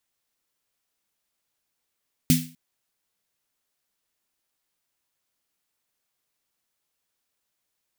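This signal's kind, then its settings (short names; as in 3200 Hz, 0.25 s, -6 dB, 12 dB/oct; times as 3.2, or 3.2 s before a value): snare drum length 0.25 s, tones 160 Hz, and 250 Hz, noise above 2100 Hz, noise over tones -5 dB, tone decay 0.36 s, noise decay 0.35 s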